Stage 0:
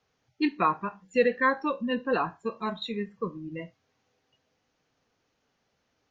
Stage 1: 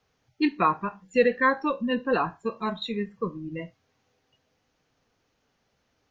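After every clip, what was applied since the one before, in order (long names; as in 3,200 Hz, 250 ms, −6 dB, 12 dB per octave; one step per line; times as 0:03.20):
low-shelf EQ 81 Hz +6.5 dB
level +2 dB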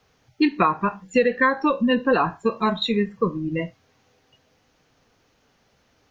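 downward compressor 6 to 1, threshold −24 dBFS, peak gain reduction 9.5 dB
level +9 dB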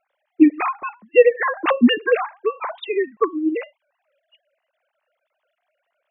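three sine waves on the formant tracks
level +3 dB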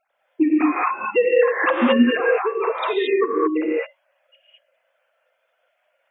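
reverb whose tail is shaped and stops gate 240 ms rising, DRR −5.5 dB
downward compressor 2 to 1, threshold −19 dBFS, peak gain reduction 10 dB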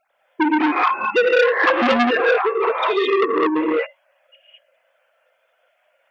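saturating transformer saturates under 1,700 Hz
level +4.5 dB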